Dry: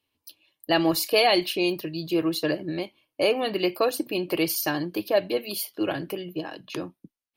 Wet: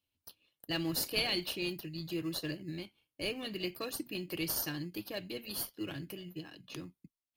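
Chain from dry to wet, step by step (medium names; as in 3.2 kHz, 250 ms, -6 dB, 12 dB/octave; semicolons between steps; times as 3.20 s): amplifier tone stack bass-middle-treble 6-0-2; in parallel at -11 dB: sample-and-hold 19×; on the sum: trim +7.5 dB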